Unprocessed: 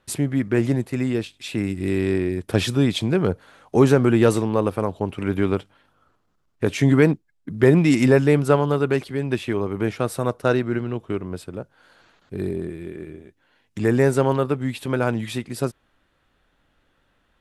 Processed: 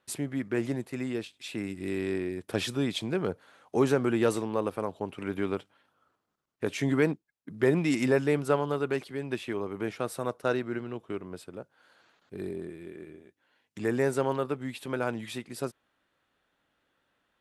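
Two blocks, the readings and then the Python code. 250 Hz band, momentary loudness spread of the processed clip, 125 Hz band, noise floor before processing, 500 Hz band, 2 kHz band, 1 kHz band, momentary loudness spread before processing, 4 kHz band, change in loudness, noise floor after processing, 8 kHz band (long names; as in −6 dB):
−10.0 dB, 14 LU, −13.5 dB, −67 dBFS, −8.5 dB, −7.0 dB, −7.5 dB, 14 LU, −7.0 dB, −9.5 dB, −79 dBFS, −7.0 dB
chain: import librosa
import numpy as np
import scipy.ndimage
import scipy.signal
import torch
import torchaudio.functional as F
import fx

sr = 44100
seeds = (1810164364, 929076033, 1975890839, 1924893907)

y = fx.highpass(x, sr, hz=250.0, slope=6)
y = y * librosa.db_to_amplitude(-7.0)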